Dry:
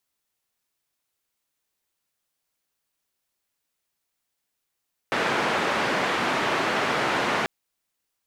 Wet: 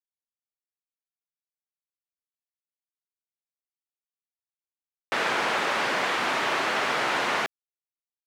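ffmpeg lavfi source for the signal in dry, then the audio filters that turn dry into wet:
-f lavfi -i "anoisesrc=color=white:duration=2.34:sample_rate=44100:seed=1,highpass=frequency=180,lowpass=frequency=1700,volume=-8.5dB"
-af "lowshelf=frequency=340:gain=-10,aeval=exprs='val(0)*gte(abs(val(0)),0.00335)':channel_layout=same"

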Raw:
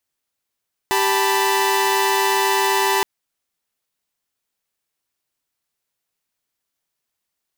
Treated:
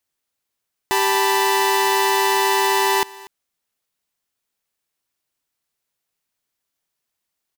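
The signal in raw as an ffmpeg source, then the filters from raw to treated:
-f lavfi -i "aevalsrc='0.126*((2*mod(392*t,1)-1)+(2*mod(880*t,1)-1)+(2*mod(987.77*t,1)-1))':duration=2.12:sample_rate=44100"
-af "aecho=1:1:240:0.0891"

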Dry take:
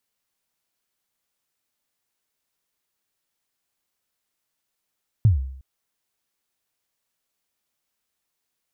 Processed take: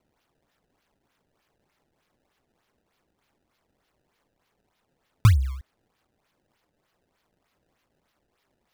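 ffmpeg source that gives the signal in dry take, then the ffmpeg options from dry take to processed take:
-f lavfi -i "aevalsrc='0.335*pow(10,-3*t/0.67)*sin(2*PI*(120*0.133/log(66/120)*(exp(log(66/120)*min(t,0.133)/0.133)-1)+66*max(t-0.133,0)))':duration=0.36:sample_rate=44100"
-filter_complex "[0:a]asplit=2[link_01][link_02];[link_02]acompressor=threshold=-27dB:ratio=6,volume=0dB[link_03];[link_01][link_03]amix=inputs=2:normalize=0,acrusher=samples=23:mix=1:aa=0.000001:lfo=1:lforange=36.8:lforate=3.3"

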